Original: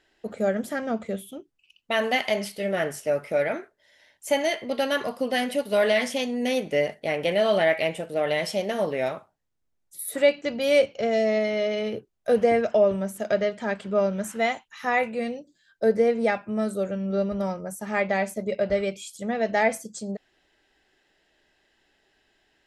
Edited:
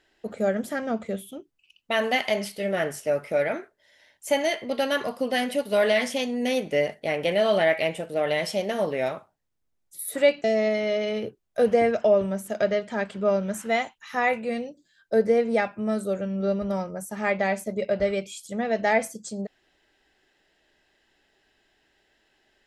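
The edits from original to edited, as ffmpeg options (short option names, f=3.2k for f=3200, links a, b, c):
-filter_complex "[0:a]asplit=2[a][b];[a]atrim=end=10.442[c];[b]atrim=start=11.138[d];[c][d]acrossfade=d=0.004:c1=hsin:c2=hsin"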